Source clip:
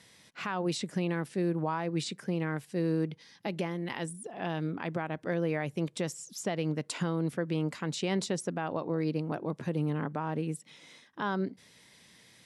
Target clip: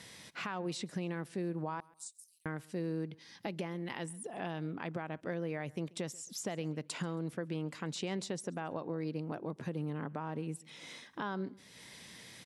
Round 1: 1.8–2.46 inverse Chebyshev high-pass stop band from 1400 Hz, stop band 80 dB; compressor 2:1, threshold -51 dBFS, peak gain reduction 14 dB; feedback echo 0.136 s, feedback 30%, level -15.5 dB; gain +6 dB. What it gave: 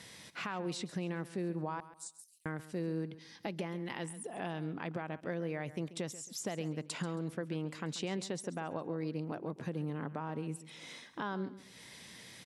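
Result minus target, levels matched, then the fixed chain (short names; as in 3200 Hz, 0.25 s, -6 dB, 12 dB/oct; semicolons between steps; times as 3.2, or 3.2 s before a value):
echo-to-direct +8.5 dB
1.8–2.46 inverse Chebyshev high-pass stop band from 1400 Hz, stop band 80 dB; compressor 2:1, threshold -51 dBFS, peak gain reduction 14 dB; feedback echo 0.136 s, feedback 30%, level -24 dB; gain +6 dB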